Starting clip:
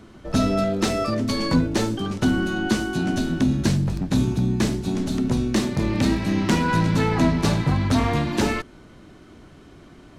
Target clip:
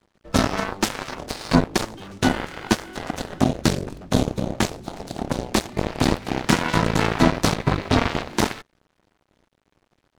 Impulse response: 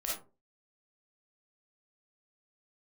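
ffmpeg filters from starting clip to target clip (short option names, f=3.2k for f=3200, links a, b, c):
-filter_complex "[0:a]asettb=1/sr,asplit=3[a][b][c];[a]atrim=end=7.554[d];[b]atrim=start=7.55:end=8.3,asetpts=PTS-STARTPTS,afade=t=in:d=0.004:c=qsin,afade=t=out:st=0.746:d=0.004:c=qsin,acrossover=split=5200[e][f];[f]acompressor=threshold=-53dB:ratio=4:attack=1:release=60[g];[e][g]amix=inputs=2:normalize=0[h];[c]atrim=start=8.296[i];[d][h]acrossfade=d=0.004:c1=hsin:c2=qsin[j];[j][i]acrossfade=d=0.004:c1=qsin:c2=hsin,aeval=exprs='0.531*(cos(1*acos(clip(val(0)/0.531,-1,1)))-cos(1*PI/2))+0.106*(cos(7*acos(clip(val(0)/0.531,-1,1)))-cos(7*PI/2))':c=same,aeval=exprs='sgn(val(0))*max(abs(val(0))-0.00299,0)':c=same,volume=3dB"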